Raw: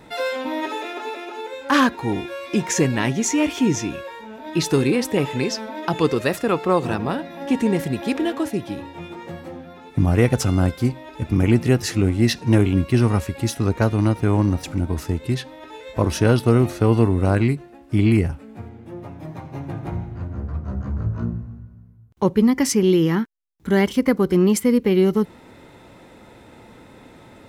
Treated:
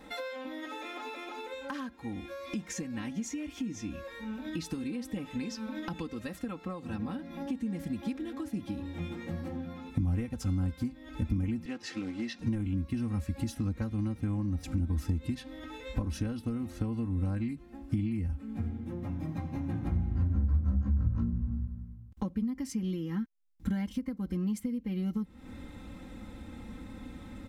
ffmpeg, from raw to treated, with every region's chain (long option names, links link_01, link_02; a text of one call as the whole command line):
ffmpeg -i in.wav -filter_complex "[0:a]asettb=1/sr,asplit=3[link_01][link_02][link_03];[link_01]atrim=end=11.654[link_04];[link_02]atrim=start=11.65:end=12.39,asetpts=PTS-STARTPTS,afade=type=in:duration=0.004:curve=qsin,afade=type=out:start_time=0.736:duration=0.004:curve=qsin,acrusher=bits=6:mode=log:mix=0:aa=0.000001,highpass=410,lowpass=4400[link_05];[link_03]atrim=start=12.386[link_06];[link_04][link_05]acrossfade=duration=0.004:curve1=hsin:curve2=qsin[link_07];[link_07][link_06]acrossfade=duration=0.004:curve1=qsin:curve2=hsin,aecho=1:1:3.8:0.83,acompressor=threshold=-29dB:ratio=16,asubboost=boost=5:cutoff=210,volume=-7dB" out.wav